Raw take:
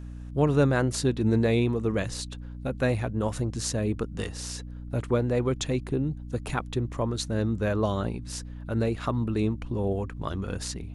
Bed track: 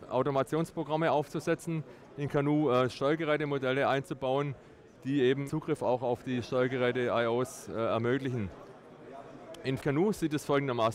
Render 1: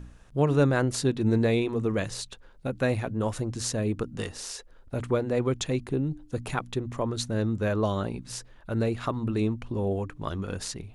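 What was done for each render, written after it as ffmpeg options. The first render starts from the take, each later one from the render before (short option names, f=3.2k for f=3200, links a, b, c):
-af "bandreject=f=60:t=h:w=4,bandreject=f=120:t=h:w=4,bandreject=f=180:t=h:w=4,bandreject=f=240:t=h:w=4,bandreject=f=300:t=h:w=4"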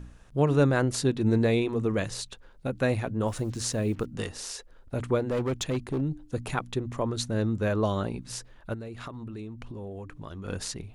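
-filter_complex "[0:a]asettb=1/sr,asplit=3[a][b][c];[a]atrim=end=3.274[d];[b]atrim=start=3.27:end=4.06,asetpts=PTS-STARTPTS,afade=t=in:d=0.004:c=qsin,afade=t=out:st=0.786:d=0.004:c=qsin,acrusher=bits=8:mix=0:aa=0.5[e];[c]atrim=start=4.056[f];[d][e]acrossfade=d=0.004:c1=hsin:c2=qsin[g];[g][f]acrossfade=d=0.004:c1=qsin:c2=hsin,asplit=3[h][i][j];[h]afade=t=out:st=5.27:d=0.02[k];[i]asoftclip=type=hard:threshold=-24dB,afade=t=in:st=5.27:d=0.02,afade=t=out:st=6:d=0.02[l];[j]afade=t=in:st=6:d=0.02[m];[k][l][m]amix=inputs=3:normalize=0,asplit=3[n][o][p];[n]afade=t=out:st=8.73:d=0.02[q];[o]acompressor=threshold=-36dB:ratio=6:attack=3.2:release=140:knee=1:detection=peak,afade=t=in:st=8.73:d=0.02,afade=t=out:st=10.44:d=0.02[r];[p]afade=t=in:st=10.44:d=0.02[s];[q][r][s]amix=inputs=3:normalize=0"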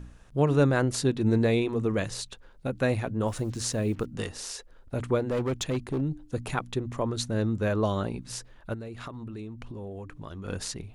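-af anull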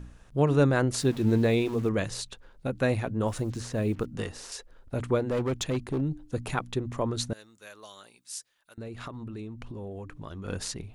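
-filter_complex "[0:a]asettb=1/sr,asplit=3[a][b][c];[a]atrim=end=0.994[d];[b]atrim=start=0.99:end=1.89,asetpts=PTS-STARTPTS,afade=t=in:d=0.004:c=qsin,afade=t=out:st=0.896:d=0.004:c=qsin,aeval=exprs='val(0)*gte(abs(val(0)),0.00841)':c=same[e];[c]atrim=start=1.886[f];[d][e]acrossfade=d=0.004:c1=hsin:c2=qsin[g];[g][f]acrossfade=d=0.004:c1=qsin:c2=hsin,asettb=1/sr,asplit=3[h][i][j];[h]atrim=end=3.454[k];[i]atrim=start=3.45:end=4.52,asetpts=PTS-STARTPTS,afade=t=in:d=0.004:c=qsin,afade=t=out:st=1.066:d=0.004:c=qsin,acrossover=split=2600[l][m];[m]acompressor=threshold=-41dB:ratio=4:attack=1:release=60[n];[l][n]amix=inputs=2:normalize=0[o];[j]atrim=start=4.516[p];[k][o]acrossfade=d=0.004:c1=hsin:c2=qsin[q];[q][p]acrossfade=d=0.004:c1=qsin:c2=hsin,asettb=1/sr,asplit=3[r][s][t];[r]atrim=end=7.334[u];[s]atrim=start=7.33:end=8.78,asetpts=PTS-STARTPTS,afade=t=in:d=0.004:c=qsin,afade=t=out:st=1.446:d=0.004:c=qsin,aderivative[v];[t]atrim=start=8.776[w];[u][v]acrossfade=d=0.004:c1=hsin:c2=qsin[x];[x][w]acrossfade=d=0.004:c1=qsin:c2=hsin"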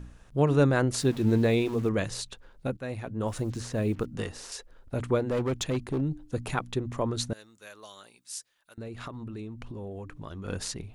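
-filter_complex "[0:a]asplit=2[a][b];[a]atrim=end=2.77,asetpts=PTS-STARTPTS,afade=t=out:st=2.766:d=0.004:c=hsin:silence=0.188365[c];[b]atrim=start=2.77,asetpts=PTS-STARTPTS,afade=t=in:d=0.69:silence=0.188365[d];[c][d]concat=n=2:v=0:a=1"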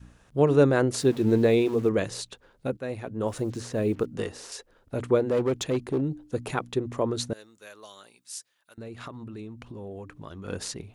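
-af "adynamicequalizer=threshold=0.0112:dfrequency=420:dqfactor=1.3:tfrequency=420:tqfactor=1.3:attack=5:release=100:ratio=0.375:range=3:mode=boostabove:tftype=bell,highpass=f=95:p=1"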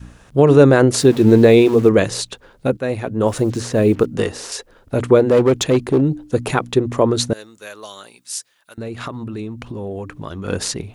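-af "alimiter=level_in=11.5dB:limit=-1dB:release=50:level=0:latency=1"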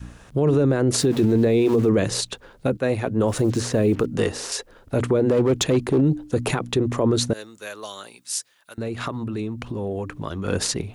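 -filter_complex "[0:a]acrossover=split=410[a][b];[b]acompressor=threshold=-18dB:ratio=4[c];[a][c]amix=inputs=2:normalize=0,alimiter=limit=-11.5dB:level=0:latency=1:release=22"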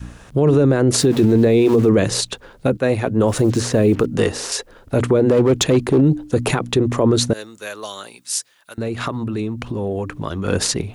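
-af "volume=4.5dB"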